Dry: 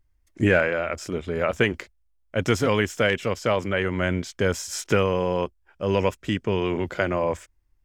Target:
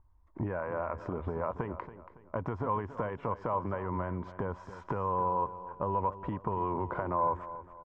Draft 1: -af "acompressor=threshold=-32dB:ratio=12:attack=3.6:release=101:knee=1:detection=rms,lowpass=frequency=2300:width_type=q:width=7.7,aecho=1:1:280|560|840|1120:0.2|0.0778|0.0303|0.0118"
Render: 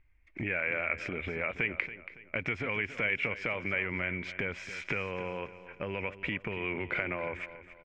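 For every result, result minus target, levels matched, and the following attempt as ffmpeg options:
2,000 Hz band +15.0 dB; 125 Hz band −5.5 dB
-af "acompressor=threshold=-32dB:ratio=12:attack=3.6:release=101:knee=1:detection=rms,lowpass=frequency=1000:width_type=q:width=7.7,aecho=1:1:280|560|840|1120:0.2|0.0778|0.0303|0.0118"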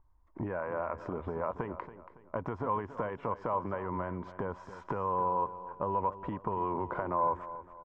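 125 Hz band −3.5 dB
-af "acompressor=threshold=-32dB:ratio=12:attack=3.6:release=101:knee=1:detection=rms,lowpass=frequency=1000:width_type=q:width=7.7,equalizer=frequency=82:width=0.77:gain=5.5,aecho=1:1:280|560|840|1120:0.2|0.0778|0.0303|0.0118"

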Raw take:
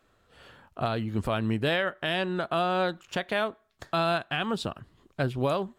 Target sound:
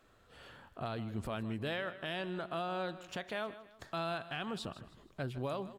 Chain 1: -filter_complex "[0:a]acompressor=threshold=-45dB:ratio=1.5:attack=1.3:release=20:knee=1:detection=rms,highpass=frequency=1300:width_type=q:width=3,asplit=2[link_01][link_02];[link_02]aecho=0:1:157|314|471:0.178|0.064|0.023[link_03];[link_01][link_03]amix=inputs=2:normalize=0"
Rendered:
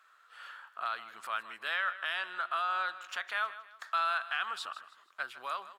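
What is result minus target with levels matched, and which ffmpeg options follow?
downward compressor: peak gain reduction −3 dB; 1,000 Hz band +3.0 dB
-filter_complex "[0:a]acompressor=threshold=-54.5dB:ratio=1.5:attack=1.3:release=20:knee=1:detection=rms,asplit=2[link_01][link_02];[link_02]aecho=0:1:157|314|471:0.178|0.064|0.023[link_03];[link_01][link_03]amix=inputs=2:normalize=0"

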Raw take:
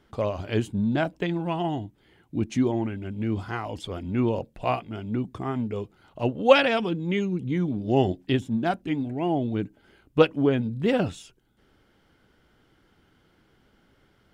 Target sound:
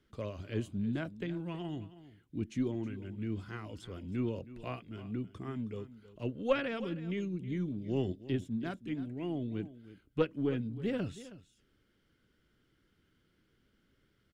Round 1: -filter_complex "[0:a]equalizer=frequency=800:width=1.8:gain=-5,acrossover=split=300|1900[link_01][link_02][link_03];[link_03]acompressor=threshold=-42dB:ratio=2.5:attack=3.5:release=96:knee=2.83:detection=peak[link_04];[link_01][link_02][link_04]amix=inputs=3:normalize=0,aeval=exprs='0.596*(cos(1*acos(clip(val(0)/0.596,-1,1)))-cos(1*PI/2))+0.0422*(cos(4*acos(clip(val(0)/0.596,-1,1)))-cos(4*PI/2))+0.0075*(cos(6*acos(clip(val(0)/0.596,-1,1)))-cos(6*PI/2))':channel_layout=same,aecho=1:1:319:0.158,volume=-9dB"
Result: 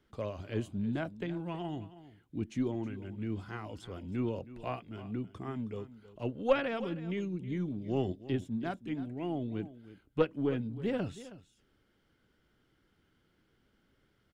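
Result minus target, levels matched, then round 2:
1,000 Hz band +3.5 dB
-filter_complex "[0:a]equalizer=frequency=800:width=1.8:gain=-13,acrossover=split=300|1900[link_01][link_02][link_03];[link_03]acompressor=threshold=-42dB:ratio=2.5:attack=3.5:release=96:knee=2.83:detection=peak[link_04];[link_01][link_02][link_04]amix=inputs=3:normalize=0,aeval=exprs='0.596*(cos(1*acos(clip(val(0)/0.596,-1,1)))-cos(1*PI/2))+0.0422*(cos(4*acos(clip(val(0)/0.596,-1,1)))-cos(4*PI/2))+0.0075*(cos(6*acos(clip(val(0)/0.596,-1,1)))-cos(6*PI/2))':channel_layout=same,aecho=1:1:319:0.158,volume=-9dB"

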